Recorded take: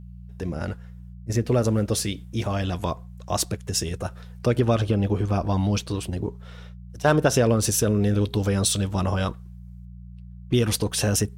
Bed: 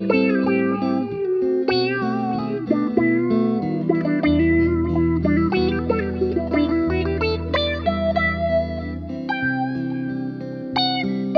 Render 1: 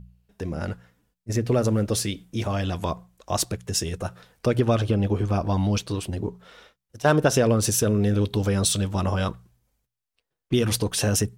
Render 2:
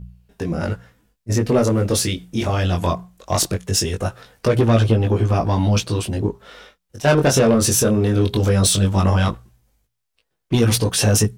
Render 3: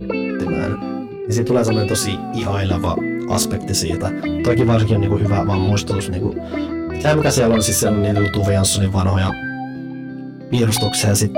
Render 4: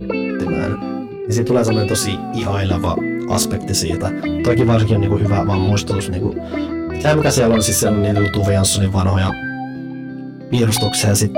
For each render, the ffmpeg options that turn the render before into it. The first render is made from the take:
ffmpeg -i in.wav -af "bandreject=frequency=60:width_type=h:width=4,bandreject=frequency=120:width_type=h:width=4,bandreject=frequency=180:width_type=h:width=4" out.wav
ffmpeg -i in.wav -filter_complex "[0:a]asplit=2[link_01][link_02];[link_02]aeval=exprs='0.422*sin(PI/2*2.24*val(0)/0.422)':channel_layout=same,volume=-4dB[link_03];[link_01][link_03]amix=inputs=2:normalize=0,flanger=delay=17.5:depth=5.1:speed=0.19" out.wav
ffmpeg -i in.wav -i bed.wav -filter_complex "[1:a]volume=-4dB[link_01];[0:a][link_01]amix=inputs=2:normalize=0" out.wav
ffmpeg -i in.wav -af "volume=1dB" out.wav

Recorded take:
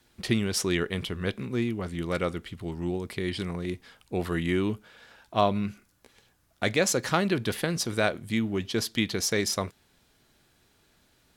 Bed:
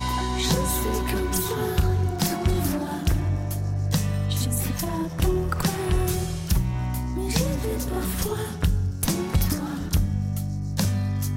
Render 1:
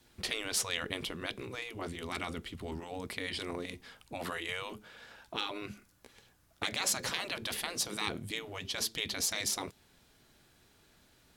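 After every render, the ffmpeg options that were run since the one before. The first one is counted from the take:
ffmpeg -i in.wav -af "afftfilt=real='re*lt(hypot(re,im),0.112)':imag='im*lt(hypot(re,im),0.112)':win_size=1024:overlap=0.75,adynamicequalizer=threshold=0.00282:dfrequency=1600:dqfactor=1.6:tfrequency=1600:tqfactor=1.6:attack=5:release=100:ratio=0.375:range=2.5:mode=cutabove:tftype=bell" out.wav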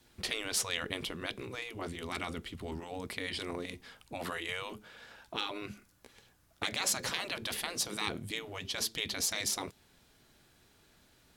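ffmpeg -i in.wav -af anull out.wav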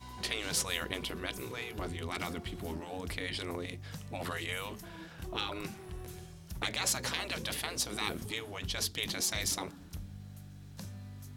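ffmpeg -i in.wav -i bed.wav -filter_complex "[1:a]volume=-21.5dB[link_01];[0:a][link_01]amix=inputs=2:normalize=0" out.wav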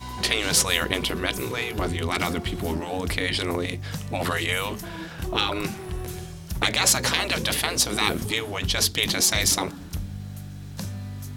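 ffmpeg -i in.wav -af "volume=12dB" out.wav

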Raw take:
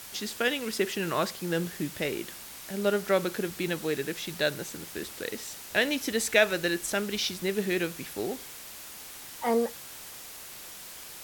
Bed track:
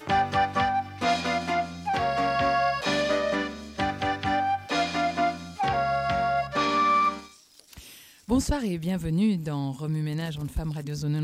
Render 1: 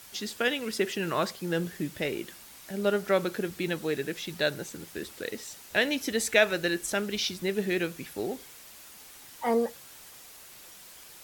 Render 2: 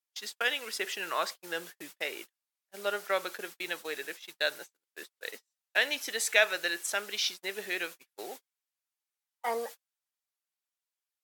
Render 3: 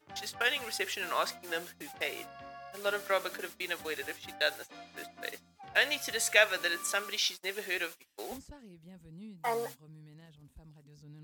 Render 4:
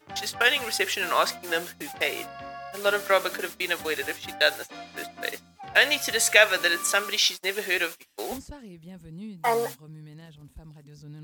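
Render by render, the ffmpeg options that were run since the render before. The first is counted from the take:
ffmpeg -i in.wav -af "afftdn=noise_reduction=6:noise_floor=-44" out.wav
ffmpeg -i in.wav -af "agate=range=-43dB:threshold=-35dB:ratio=16:detection=peak,highpass=740" out.wav
ffmpeg -i in.wav -i bed.wav -filter_complex "[1:a]volume=-24.5dB[link_01];[0:a][link_01]amix=inputs=2:normalize=0" out.wav
ffmpeg -i in.wav -af "volume=8.5dB,alimiter=limit=-3dB:level=0:latency=1" out.wav

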